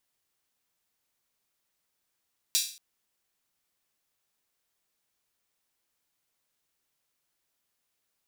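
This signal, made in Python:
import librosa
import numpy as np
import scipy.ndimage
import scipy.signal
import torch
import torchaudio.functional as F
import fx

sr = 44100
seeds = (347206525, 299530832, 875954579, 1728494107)

y = fx.drum_hat_open(sr, length_s=0.23, from_hz=4000.0, decay_s=0.43)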